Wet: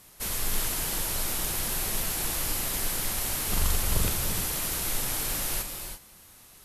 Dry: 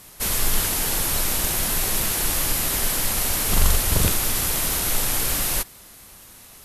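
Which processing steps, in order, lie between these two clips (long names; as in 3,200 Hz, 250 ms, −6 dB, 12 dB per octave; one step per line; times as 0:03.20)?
reverb whose tail is shaped and stops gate 370 ms rising, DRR 5.5 dB
level −8 dB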